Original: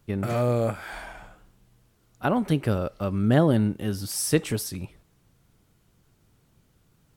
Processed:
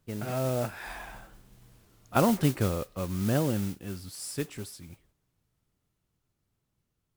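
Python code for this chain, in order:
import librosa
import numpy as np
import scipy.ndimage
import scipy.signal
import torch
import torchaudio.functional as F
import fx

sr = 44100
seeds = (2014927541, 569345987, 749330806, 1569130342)

y = fx.doppler_pass(x, sr, speed_mps=24, closest_m=10.0, pass_at_s=1.7)
y = fx.mod_noise(y, sr, seeds[0], snr_db=15)
y = F.gain(torch.from_numpy(y), 4.5).numpy()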